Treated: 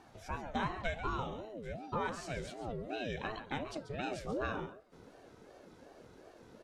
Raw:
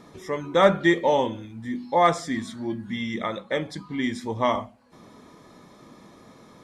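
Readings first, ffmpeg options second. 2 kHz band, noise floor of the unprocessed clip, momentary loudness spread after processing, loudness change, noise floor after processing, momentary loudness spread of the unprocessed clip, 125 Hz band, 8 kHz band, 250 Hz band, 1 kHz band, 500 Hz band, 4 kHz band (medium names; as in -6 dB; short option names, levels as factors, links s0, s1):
-12.5 dB, -51 dBFS, 20 LU, -15.0 dB, -59 dBFS, 13 LU, -9.5 dB, -12.0 dB, -16.0 dB, -14.0 dB, -16.5 dB, -14.0 dB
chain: -filter_complex "[0:a]asubboost=boost=11:cutoff=91,acompressor=threshold=0.0708:ratio=5,asplit=2[s0][s1];[s1]aecho=0:1:138:0.266[s2];[s0][s2]amix=inputs=2:normalize=0,aeval=exprs='val(0)*sin(2*PI*410*n/s+410*0.35/2.7*sin(2*PI*2.7*n/s))':c=same,volume=0.447"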